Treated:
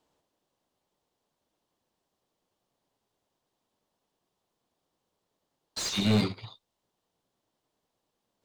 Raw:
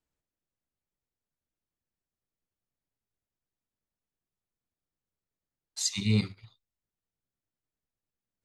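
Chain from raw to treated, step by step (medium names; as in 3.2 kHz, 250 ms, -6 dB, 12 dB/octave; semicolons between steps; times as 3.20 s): high-order bell 1.8 kHz -8.5 dB 1.2 oct; overdrive pedal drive 29 dB, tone 1.4 kHz, clips at -15 dBFS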